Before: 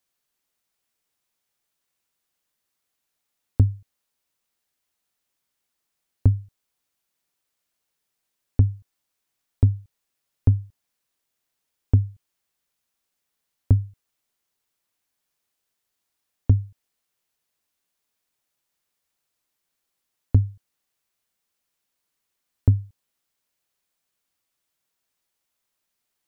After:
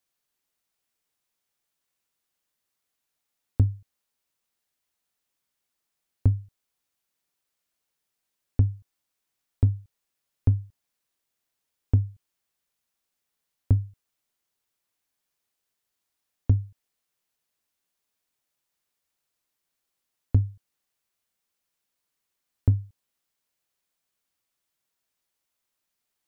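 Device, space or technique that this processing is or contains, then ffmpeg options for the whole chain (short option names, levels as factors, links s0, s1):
parallel distortion: -filter_complex "[0:a]asplit=2[s0][s1];[s1]asoftclip=type=hard:threshold=0.1,volume=0.2[s2];[s0][s2]amix=inputs=2:normalize=0,volume=0.631"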